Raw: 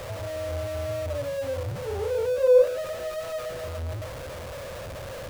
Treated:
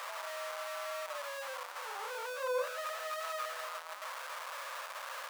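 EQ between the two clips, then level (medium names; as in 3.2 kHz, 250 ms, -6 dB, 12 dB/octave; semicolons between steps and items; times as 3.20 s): ladder high-pass 900 Hz, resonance 45%; +6.5 dB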